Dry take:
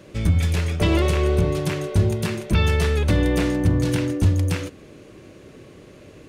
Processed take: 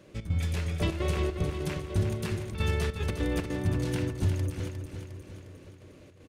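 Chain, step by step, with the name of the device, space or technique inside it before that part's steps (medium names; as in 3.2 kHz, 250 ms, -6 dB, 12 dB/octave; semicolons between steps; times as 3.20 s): trance gate with a delay (trance gate "xx.xxxxxx.xxx.x." 150 bpm -12 dB; feedback delay 356 ms, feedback 54%, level -8 dB); trim -9 dB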